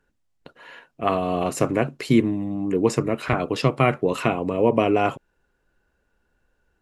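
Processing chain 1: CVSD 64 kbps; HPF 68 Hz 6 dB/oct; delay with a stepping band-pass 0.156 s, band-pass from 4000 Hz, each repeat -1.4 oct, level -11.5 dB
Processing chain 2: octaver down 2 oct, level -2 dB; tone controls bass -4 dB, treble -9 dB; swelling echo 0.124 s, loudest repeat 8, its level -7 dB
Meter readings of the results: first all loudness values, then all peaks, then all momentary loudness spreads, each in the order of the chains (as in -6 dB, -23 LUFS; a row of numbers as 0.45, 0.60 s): -23.0, -19.0 LUFS; -6.0, -2.5 dBFS; 6, 7 LU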